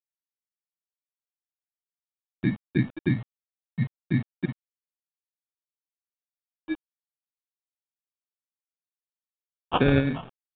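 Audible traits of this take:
aliases and images of a low sample rate 2,000 Hz, jitter 0%
tremolo saw up 3.1 Hz, depth 50%
a quantiser's noise floor 8 bits, dither none
mu-law

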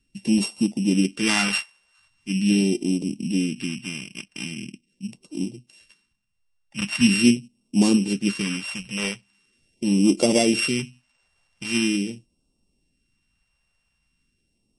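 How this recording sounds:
a buzz of ramps at a fixed pitch in blocks of 16 samples
phaser sweep stages 2, 0.42 Hz, lowest notch 290–1,700 Hz
MP3

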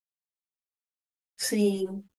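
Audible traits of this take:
tremolo triangle 1.7 Hz, depth 40%
a quantiser's noise floor 12 bits, dither none
a shimmering, thickened sound

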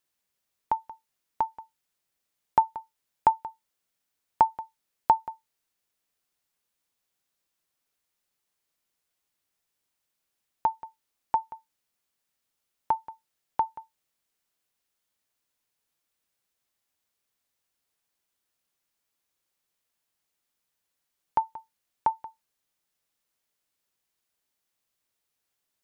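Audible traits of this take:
background noise floor −82 dBFS
spectral slope −4.0 dB per octave

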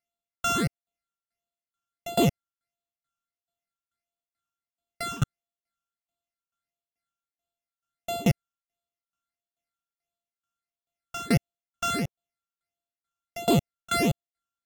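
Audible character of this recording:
a buzz of ramps at a fixed pitch in blocks of 64 samples
phaser sweep stages 8, 1.5 Hz, lowest notch 590–1,800 Hz
tremolo saw down 2.3 Hz, depth 95%
AAC

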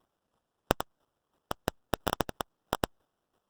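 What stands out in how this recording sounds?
aliases and images of a low sample rate 2,200 Hz, jitter 0%
chopped level 3 Hz, depth 60%, duty 15%
Opus

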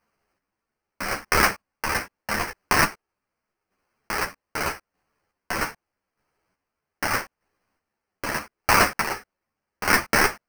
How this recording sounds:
chopped level 0.81 Hz, depth 60%, duty 30%
aliases and images of a low sample rate 3,600 Hz, jitter 0%
a shimmering, thickened sound

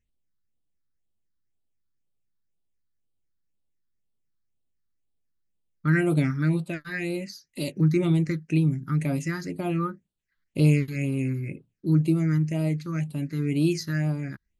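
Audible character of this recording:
phaser sweep stages 6, 2 Hz, lowest notch 660–1,800 Hz

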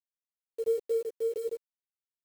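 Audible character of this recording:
a quantiser's noise floor 8 bits, dither none
tremolo saw down 4.5 Hz, depth 50%
a shimmering, thickened sound

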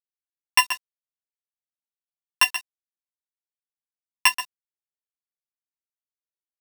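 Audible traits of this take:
a buzz of ramps at a fixed pitch in blocks of 16 samples
sample-and-hold tremolo 3.5 Hz
a quantiser's noise floor 8 bits, dither none
a shimmering, thickened sound

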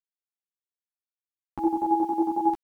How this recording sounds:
chopped level 11 Hz, depth 60%, duty 35%
a quantiser's noise floor 10 bits, dither none
a shimmering, thickened sound

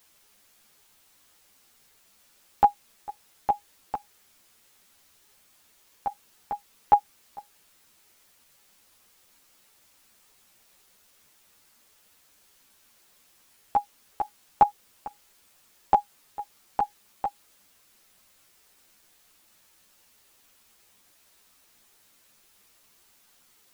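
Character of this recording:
tremolo saw up 0.68 Hz, depth 90%
a quantiser's noise floor 10 bits, dither triangular
a shimmering, thickened sound

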